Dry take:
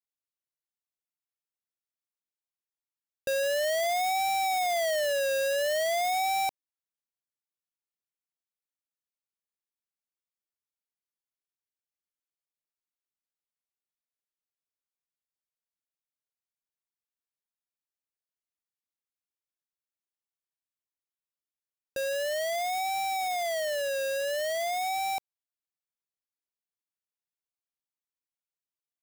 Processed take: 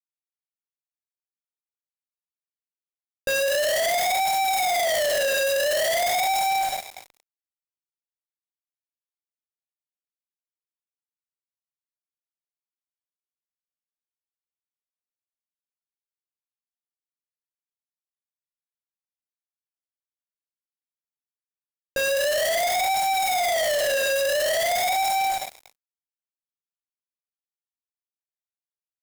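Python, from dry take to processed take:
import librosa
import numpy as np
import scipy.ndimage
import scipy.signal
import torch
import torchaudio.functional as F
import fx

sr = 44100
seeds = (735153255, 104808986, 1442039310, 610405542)

y = fx.rev_double_slope(x, sr, seeds[0], early_s=1.0, late_s=3.3, knee_db=-20, drr_db=-4.0)
y = fx.fuzz(y, sr, gain_db=39.0, gate_db=-43.0)
y = y * librosa.db_to_amplitude(-8.5)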